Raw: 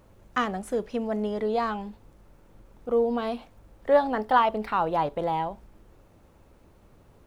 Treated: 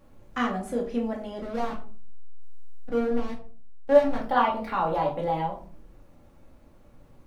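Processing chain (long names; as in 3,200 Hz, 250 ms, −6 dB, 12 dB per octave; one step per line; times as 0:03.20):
0:01.40–0:04.22: slack as between gear wheels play −21 dBFS
rectangular room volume 300 cubic metres, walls furnished, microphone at 2.3 metres
level −5 dB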